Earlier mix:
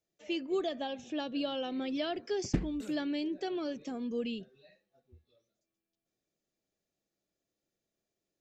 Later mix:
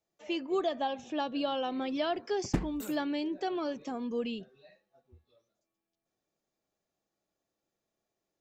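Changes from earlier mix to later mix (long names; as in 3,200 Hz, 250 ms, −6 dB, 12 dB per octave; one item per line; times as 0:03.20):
background: remove high-frequency loss of the air 84 metres
master: add parametric band 970 Hz +10.5 dB 0.97 octaves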